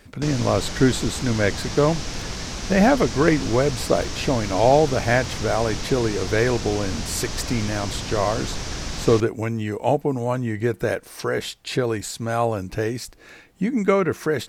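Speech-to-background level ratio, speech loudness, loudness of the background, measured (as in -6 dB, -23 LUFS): 8.0 dB, -22.5 LUFS, -30.5 LUFS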